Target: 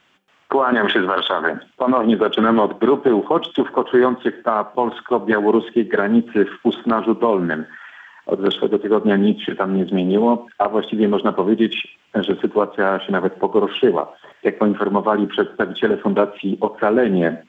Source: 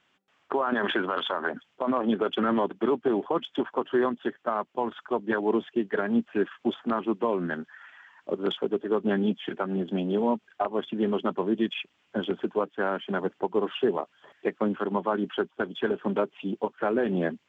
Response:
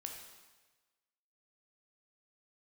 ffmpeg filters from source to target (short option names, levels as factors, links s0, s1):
-filter_complex "[0:a]asplit=2[s0][s1];[1:a]atrim=start_sample=2205,atrim=end_sample=6174[s2];[s1][s2]afir=irnorm=-1:irlink=0,volume=0.562[s3];[s0][s3]amix=inputs=2:normalize=0,volume=2.37"